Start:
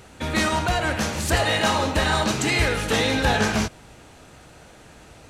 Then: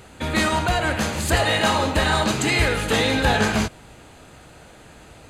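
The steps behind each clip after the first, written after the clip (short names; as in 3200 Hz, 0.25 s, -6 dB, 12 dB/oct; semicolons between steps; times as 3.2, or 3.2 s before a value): notch 5600 Hz, Q 6.5; gain +1.5 dB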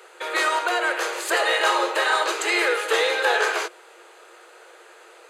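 rippled Chebyshev high-pass 340 Hz, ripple 6 dB; gain +3 dB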